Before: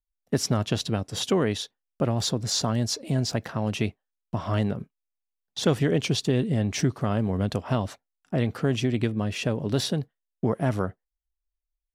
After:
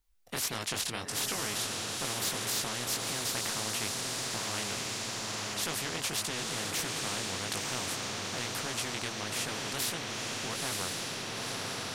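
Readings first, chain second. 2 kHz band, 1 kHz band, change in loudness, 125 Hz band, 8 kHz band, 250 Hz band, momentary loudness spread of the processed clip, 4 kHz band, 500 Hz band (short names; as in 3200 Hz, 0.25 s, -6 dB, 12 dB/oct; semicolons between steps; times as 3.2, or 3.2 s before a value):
+1.5 dB, -3.0 dB, -6.0 dB, -17.0 dB, +3.5 dB, -15.0 dB, 3 LU, 0.0 dB, -12.0 dB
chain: chorus 1.6 Hz, delay 17.5 ms, depth 6.8 ms; soft clip -12 dBFS, distortion -28 dB; notch 600 Hz, Q 12; on a send: diffused feedback echo 0.956 s, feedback 50%, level -7.5 dB; on the sum: spectral compressor 4:1; gain -4 dB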